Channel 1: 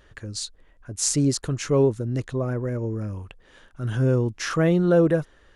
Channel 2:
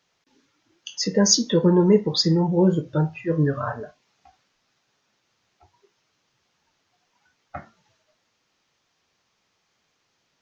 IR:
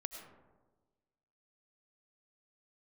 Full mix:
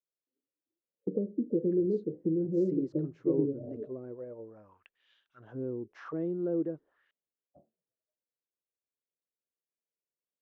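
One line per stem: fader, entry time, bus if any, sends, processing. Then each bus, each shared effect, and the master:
-9.0 dB, 1.55 s, no send, none
+0.5 dB, 0.00 s, no send, steep low-pass 570 Hz 48 dB/octave; compression 6:1, threshold -22 dBFS, peak gain reduction 11 dB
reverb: none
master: low-pass 5.4 kHz; auto-wah 330–3800 Hz, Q 2.3, down, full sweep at -30 dBFS

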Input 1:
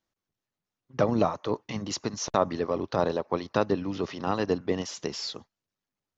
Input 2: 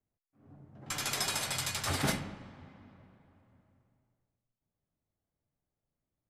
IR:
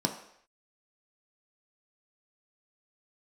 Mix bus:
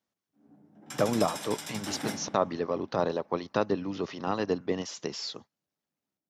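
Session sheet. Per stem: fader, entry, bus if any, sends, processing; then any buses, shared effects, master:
-2.0 dB, 0.00 s, no send, none
-7.5 dB, 0.00 s, send -11.5 dB, none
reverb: on, pre-delay 3 ms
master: high-pass 110 Hz 12 dB/octave

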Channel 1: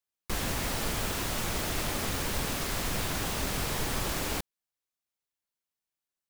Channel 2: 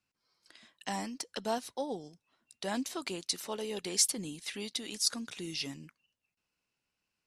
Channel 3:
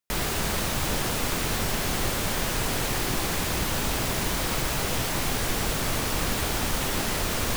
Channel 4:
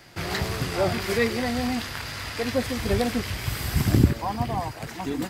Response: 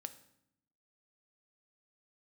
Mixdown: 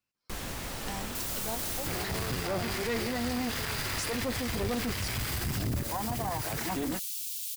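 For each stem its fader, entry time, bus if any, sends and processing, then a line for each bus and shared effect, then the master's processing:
-8.5 dB, 0.00 s, send -5.5 dB, none
-4.0 dB, 0.00 s, no send, none
-6.0 dB, 1.05 s, no send, inverse Chebyshev high-pass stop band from 1.4 kHz, stop band 40 dB; differentiator
+1.5 dB, 1.70 s, no send, level rider gain up to 8 dB; valve stage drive 14 dB, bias 0.7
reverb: on, RT60 0.75 s, pre-delay 3 ms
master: peak limiter -23 dBFS, peak gain reduction 14.5 dB

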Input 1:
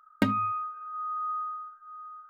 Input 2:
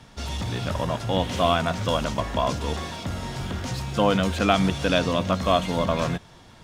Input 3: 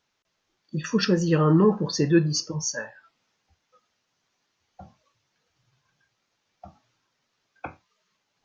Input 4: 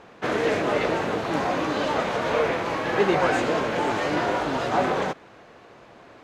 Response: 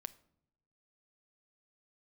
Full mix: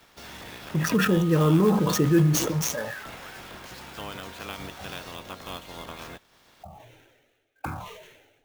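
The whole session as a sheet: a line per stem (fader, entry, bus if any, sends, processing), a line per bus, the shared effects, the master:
-4.5 dB, 0.70 s, bus B, no send, none
-8.5 dB, 0.00 s, bus A, no send, spectral peaks clipped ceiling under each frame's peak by 18 dB
+2.5 dB, 0.00 s, bus B, send -6.5 dB, local Wiener filter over 9 samples; touch-sensitive phaser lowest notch 180 Hz, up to 4.8 kHz, full sweep at -25 dBFS; decay stretcher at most 45 dB/s
-9.5 dB, 0.00 s, bus A, no send, high-pass 1.5 kHz 12 dB/octave
bus A: 0.0 dB, compression 1.5:1, threshold -49 dBFS, peak gain reduction 9.5 dB
bus B: 0.0 dB, tremolo triangle 0.56 Hz, depth 50%; compression, threshold -23 dBFS, peak gain reduction 11.5 dB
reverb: on, pre-delay 6 ms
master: sampling jitter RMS 0.02 ms

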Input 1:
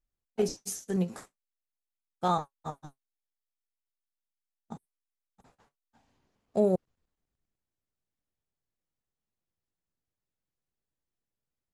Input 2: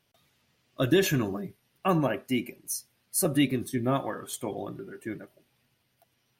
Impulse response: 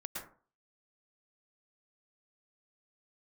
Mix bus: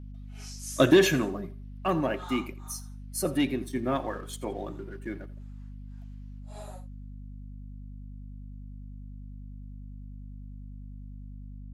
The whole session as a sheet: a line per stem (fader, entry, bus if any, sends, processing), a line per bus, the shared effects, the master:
-7.5 dB, 0.00 s, no send, no echo send, phase randomisation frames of 200 ms; high-pass 1.1 kHz 24 dB/octave; auto duck -8 dB, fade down 1.95 s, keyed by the second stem
0.82 s -5 dB -> 1.33 s -14 dB, 0.00 s, no send, echo send -18.5 dB, treble shelf 9.1 kHz -11.5 dB; waveshaping leveller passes 1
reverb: none
echo: feedback delay 85 ms, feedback 23%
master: high-pass 180 Hz; level rider gain up to 10 dB; hum 50 Hz, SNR 10 dB

